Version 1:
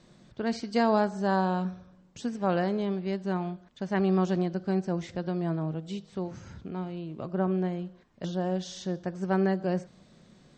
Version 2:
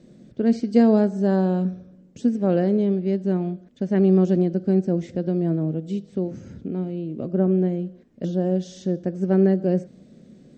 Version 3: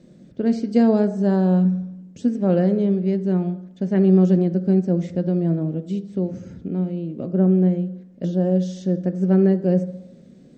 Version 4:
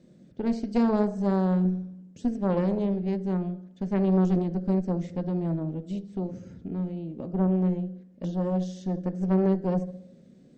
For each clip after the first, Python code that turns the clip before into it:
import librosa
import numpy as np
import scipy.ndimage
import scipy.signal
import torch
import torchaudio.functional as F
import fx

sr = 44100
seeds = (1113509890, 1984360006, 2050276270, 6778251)

y1 = fx.graphic_eq(x, sr, hz=(125, 250, 500, 1000, 4000), db=(3, 11, 8, -11, -4))
y2 = fx.rev_fdn(y1, sr, rt60_s=0.85, lf_ratio=0.9, hf_ratio=0.25, size_ms=33.0, drr_db=10.5)
y3 = fx.tube_stage(y2, sr, drive_db=13.0, bias=0.8)
y3 = y3 * 10.0 ** (-1.5 / 20.0)